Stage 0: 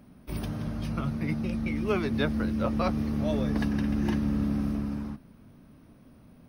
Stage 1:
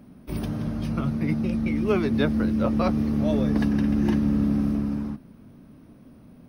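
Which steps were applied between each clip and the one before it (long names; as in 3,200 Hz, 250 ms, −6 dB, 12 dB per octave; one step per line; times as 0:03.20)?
parametric band 270 Hz +5 dB 2.3 octaves
level +1 dB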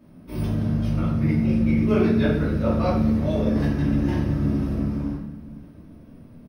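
repeating echo 506 ms, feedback 49%, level −22 dB
rectangular room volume 190 cubic metres, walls mixed, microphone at 2.7 metres
level −8.5 dB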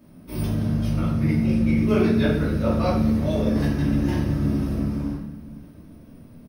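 high-shelf EQ 4,900 Hz +9 dB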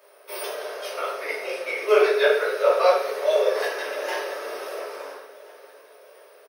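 Chebyshev high-pass with heavy ripple 400 Hz, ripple 3 dB
repeating echo 688 ms, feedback 49%, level −19.5 dB
level +8.5 dB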